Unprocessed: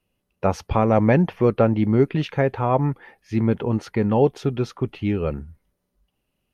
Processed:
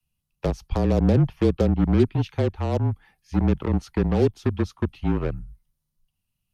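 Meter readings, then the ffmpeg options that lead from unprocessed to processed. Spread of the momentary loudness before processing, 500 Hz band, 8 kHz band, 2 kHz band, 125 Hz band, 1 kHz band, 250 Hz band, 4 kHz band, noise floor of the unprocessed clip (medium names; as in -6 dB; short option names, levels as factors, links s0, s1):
8 LU, -4.5 dB, no reading, -7.0 dB, 0.0 dB, -8.5 dB, -1.5 dB, -1.5 dB, -77 dBFS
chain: -filter_complex "[0:a]equalizer=f=1800:w=0.92:g=-11.5,acrossover=split=220|980|3200[s0][s1][s2][s3];[s1]acrusher=bits=3:mix=0:aa=0.5[s4];[s0][s4][s2][s3]amix=inputs=4:normalize=0,afreqshift=-31,acrossover=split=470[s5][s6];[s6]acompressor=threshold=0.0224:ratio=3[s7];[s5][s7]amix=inputs=2:normalize=0"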